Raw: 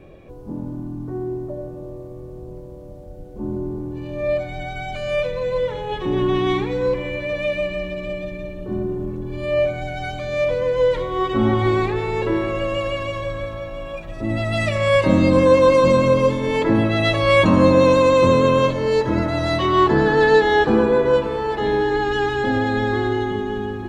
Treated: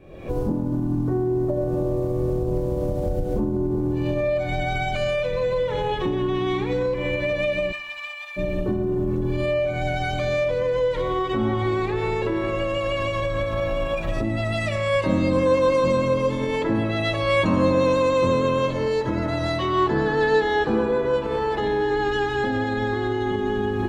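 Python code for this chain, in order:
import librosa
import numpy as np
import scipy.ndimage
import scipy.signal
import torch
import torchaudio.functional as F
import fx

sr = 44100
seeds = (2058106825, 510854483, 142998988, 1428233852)

y = fx.recorder_agc(x, sr, target_db=-11.0, rise_db_per_s=62.0, max_gain_db=30)
y = fx.steep_highpass(y, sr, hz=860.0, slope=48, at=(7.71, 8.36), fade=0.02)
y = fx.echo_feedback(y, sr, ms=89, feedback_pct=58, wet_db=-22.5)
y = y * librosa.db_to_amplitude(-5.5)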